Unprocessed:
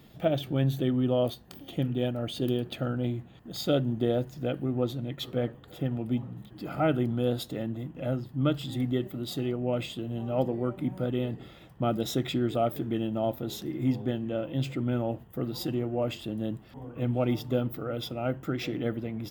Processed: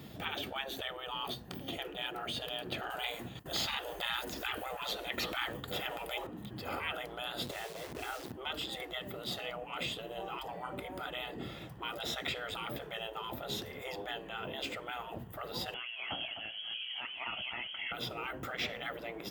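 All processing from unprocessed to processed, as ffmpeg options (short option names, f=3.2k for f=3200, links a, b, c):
-filter_complex "[0:a]asettb=1/sr,asplit=3[a][b][c];[a]atrim=end=2.904[d];[b]atrim=start=2.9:end=6.27,asetpts=PTS-STARTPTS,afade=t=in:d=0.004:c=qsin,afade=t=out:st=3.366:d=0.004:c=qsin,agate=range=-33dB:threshold=-48dB:ratio=3:release=100:detection=peak,acontrast=50,highshelf=f=4.4k:g=11.5[e];[c]atrim=start=6.266[f];[d][e]acrossfade=d=0.004:c1=hsin:c2=qsin[g];[g][f]acrossfade=d=0.004:c1=qsin:c2=hsin,asettb=1/sr,asplit=3[h][i][j];[h]atrim=end=7.414[k];[i]atrim=start=7.41:end=8.32,asetpts=PTS-STARTPTS,afade=t=in:d=0.004:c=qsin,afade=t=out:st=0.906:d=0.004:c=qsin,acrusher=bits=9:dc=4:mix=0:aa=0.000001,equalizer=f=190:t=o:w=2.7:g=7[l];[j]atrim=start=8.316[m];[k][l]acrossfade=d=0.004:c1=hsin:c2=qsin[n];[n][m]acrossfade=d=0.004:c1=qsin:c2=hsin,asettb=1/sr,asplit=3[o][p][q];[o]atrim=end=15.744[r];[p]atrim=start=15.74:end=17.92,asetpts=PTS-STARTPTS,afade=t=in:d=0.004:c=qsin,afade=t=out:st=2.176:d=0.004:c=qsin,lowpass=f=2.9k:t=q:w=0.5098,lowpass=f=2.9k:t=q:w=0.6013,lowpass=f=2.9k:t=q:w=0.9,lowpass=f=2.9k:t=q:w=2.563,afreqshift=-3400,aecho=1:1:255:0.282,atrim=end_sample=96138[s];[q]atrim=start=17.916[t];[r][s]acrossfade=d=0.004:c1=hsin:c2=qsin[u];[u][t]acrossfade=d=0.004:c1=qsin:c2=hsin,acrossover=split=3800[v][w];[w]acompressor=threshold=-50dB:ratio=4:attack=1:release=60[x];[v][x]amix=inputs=2:normalize=0,afftfilt=real='re*lt(hypot(re,im),0.0501)':imag='im*lt(hypot(re,im),0.0501)':win_size=1024:overlap=0.75,highpass=60,volume=5.5dB"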